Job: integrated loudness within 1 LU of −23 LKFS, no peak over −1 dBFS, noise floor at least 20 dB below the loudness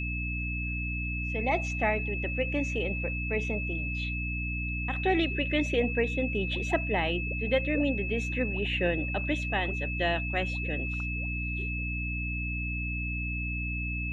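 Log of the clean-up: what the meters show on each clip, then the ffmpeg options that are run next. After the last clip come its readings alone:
mains hum 60 Hz; hum harmonics up to 300 Hz; level of the hum −31 dBFS; interfering tone 2,600 Hz; level of the tone −34 dBFS; integrated loudness −30.0 LKFS; sample peak −13.5 dBFS; target loudness −23.0 LKFS
→ -af "bandreject=frequency=60:width_type=h:width=6,bandreject=frequency=120:width_type=h:width=6,bandreject=frequency=180:width_type=h:width=6,bandreject=frequency=240:width_type=h:width=6,bandreject=frequency=300:width_type=h:width=6"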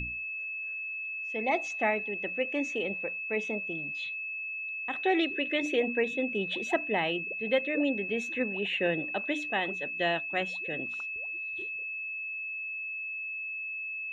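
mains hum none found; interfering tone 2,600 Hz; level of the tone −34 dBFS
→ -af "bandreject=frequency=2600:width=30"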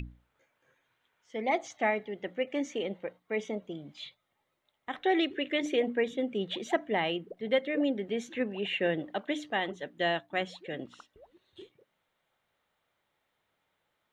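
interfering tone none found; integrated loudness −32.0 LKFS; sample peak −15.5 dBFS; target loudness −23.0 LKFS
→ -af "volume=9dB"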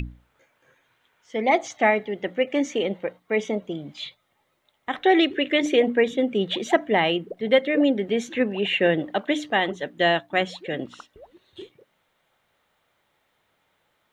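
integrated loudness −23.5 LKFS; sample peak −6.5 dBFS; background noise floor −71 dBFS

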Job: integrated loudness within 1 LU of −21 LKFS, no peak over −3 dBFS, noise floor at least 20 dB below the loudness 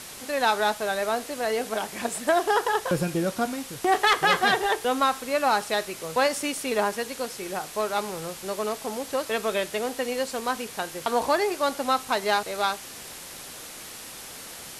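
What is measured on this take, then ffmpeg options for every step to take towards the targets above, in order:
background noise floor −41 dBFS; target noise floor −46 dBFS; integrated loudness −26.0 LKFS; sample peak −8.5 dBFS; target loudness −21.0 LKFS
→ -af "afftdn=noise_reduction=6:noise_floor=-41"
-af "volume=5dB"

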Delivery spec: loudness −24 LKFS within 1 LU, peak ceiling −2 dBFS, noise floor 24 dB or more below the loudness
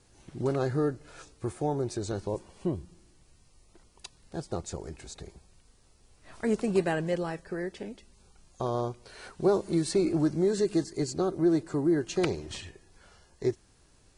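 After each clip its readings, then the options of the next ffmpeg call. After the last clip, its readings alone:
integrated loudness −30.0 LKFS; sample peak −11.5 dBFS; target loudness −24.0 LKFS
→ -af "volume=6dB"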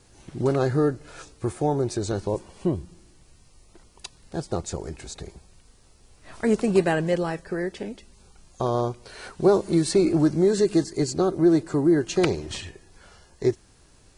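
integrated loudness −24.0 LKFS; sample peak −5.5 dBFS; background noise floor −56 dBFS

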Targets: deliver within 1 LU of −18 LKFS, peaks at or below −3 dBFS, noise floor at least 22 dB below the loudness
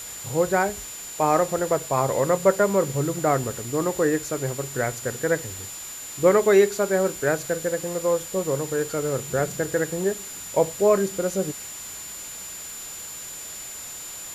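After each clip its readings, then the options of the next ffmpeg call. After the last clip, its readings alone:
interfering tone 7,100 Hz; level of the tone −36 dBFS; background noise floor −37 dBFS; target noise floor −47 dBFS; integrated loudness −24.5 LKFS; sample peak −6.0 dBFS; target loudness −18.0 LKFS
→ -af "bandreject=frequency=7100:width=30"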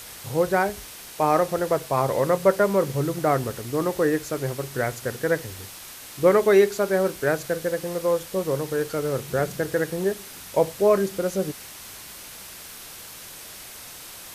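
interfering tone none found; background noise floor −41 dBFS; target noise floor −46 dBFS
→ -af "afftdn=noise_reduction=6:noise_floor=-41"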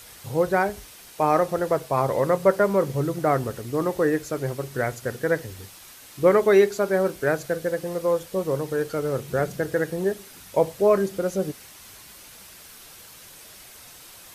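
background noise floor −46 dBFS; integrated loudness −24.0 LKFS; sample peak −6.5 dBFS; target loudness −18.0 LKFS
→ -af "volume=6dB,alimiter=limit=-3dB:level=0:latency=1"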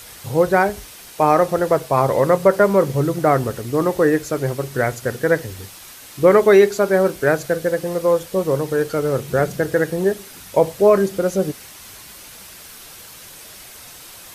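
integrated loudness −18.0 LKFS; sample peak −3.0 dBFS; background noise floor −40 dBFS

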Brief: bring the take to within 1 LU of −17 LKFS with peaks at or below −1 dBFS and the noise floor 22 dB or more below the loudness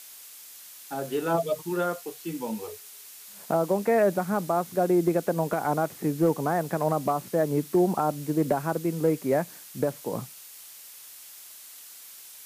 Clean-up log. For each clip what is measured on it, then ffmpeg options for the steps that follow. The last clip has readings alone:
background noise floor −47 dBFS; target noise floor −49 dBFS; integrated loudness −27.0 LKFS; sample peak −13.5 dBFS; target loudness −17.0 LKFS
→ -af "afftdn=noise_reduction=6:noise_floor=-47"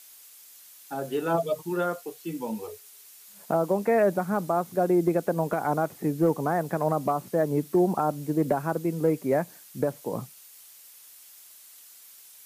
background noise floor −51 dBFS; integrated loudness −27.0 LKFS; sample peak −13.5 dBFS; target loudness −17.0 LKFS
→ -af "volume=10dB"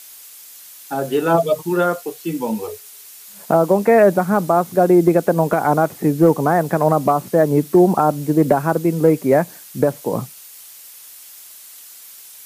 integrated loudness −17.0 LKFS; sample peak −3.5 dBFS; background noise floor −41 dBFS

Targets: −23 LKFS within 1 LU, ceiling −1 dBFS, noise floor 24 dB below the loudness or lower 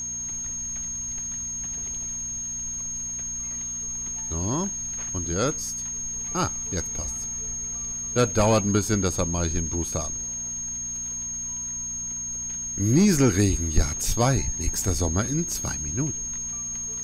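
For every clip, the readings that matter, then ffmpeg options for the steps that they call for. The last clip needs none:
mains hum 60 Hz; hum harmonics up to 240 Hz; level of the hum −44 dBFS; interfering tone 6,500 Hz; level of the tone −29 dBFS; integrated loudness −26.0 LKFS; sample peak −9.0 dBFS; target loudness −23.0 LKFS
→ -af "bandreject=frequency=60:width_type=h:width=4,bandreject=frequency=120:width_type=h:width=4,bandreject=frequency=180:width_type=h:width=4,bandreject=frequency=240:width_type=h:width=4"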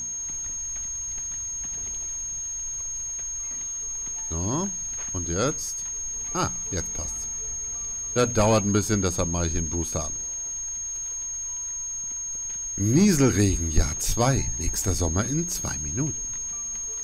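mains hum none found; interfering tone 6,500 Hz; level of the tone −29 dBFS
→ -af "bandreject=frequency=6500:width=30"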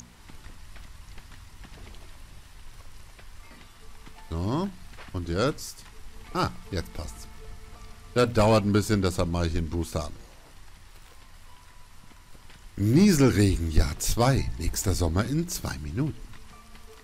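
interfering tone none found; integrated loudness −26.0 LKFS; sample peak −9.5 dBFS; target loudness −23.0 LKFS
→ -af "volume=3dB"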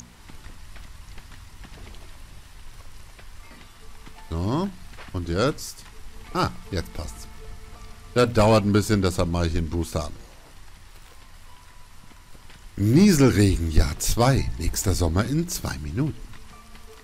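integrated loudness −23.0 LKFS; sample peak −6.5 dBFS; background noise floor −48 dBFS

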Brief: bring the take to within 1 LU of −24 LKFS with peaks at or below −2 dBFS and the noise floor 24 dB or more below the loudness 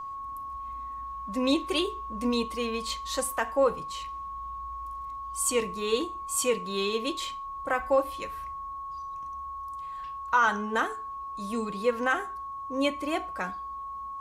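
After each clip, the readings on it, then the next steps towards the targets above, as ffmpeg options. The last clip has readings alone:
interfering tone 1,100 Hz; level of the tone −35 dBFS; integrated loudness −30.5 LKFS; sample peak −12.0 dBFS; target loudness −24.0 LKFS
→ -af "bandreject=frequency=1100:width=30"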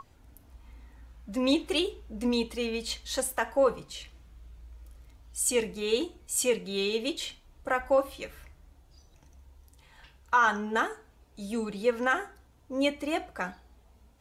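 interfering tone none found; integrated loudness −29.5 LKFS; sample peak −12.5 dBFS; target loudness −24.0 LKFS
→ -af "volume=5.5dB"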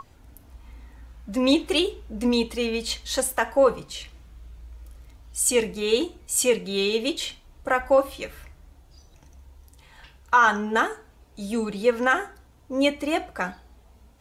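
integrated loudness −24.0 LKFS; sample peak −7.0 dBFS; background noise floor −55 dBFS

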